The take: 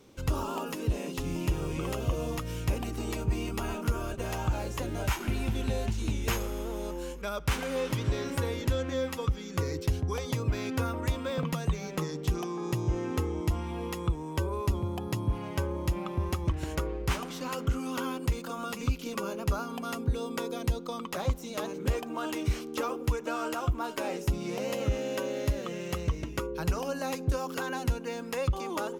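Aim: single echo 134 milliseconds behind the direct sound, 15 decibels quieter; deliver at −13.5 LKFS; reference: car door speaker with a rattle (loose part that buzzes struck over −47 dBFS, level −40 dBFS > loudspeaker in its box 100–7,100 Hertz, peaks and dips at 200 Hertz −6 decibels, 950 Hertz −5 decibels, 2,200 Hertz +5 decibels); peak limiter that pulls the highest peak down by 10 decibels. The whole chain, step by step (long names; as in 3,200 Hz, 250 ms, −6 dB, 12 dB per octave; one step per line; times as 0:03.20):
brickwall limiter −29 dBFS
single-tap delay 134 ms −15 dB
loose part that buzzes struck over −47 dBFS, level −40 dBFS
loudspeaker in its box 100–7,100 Hz, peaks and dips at 200 Hz −6 dB, 950 Hz −5 dB, 2,200 Hz +5 dB
level +25.5 dB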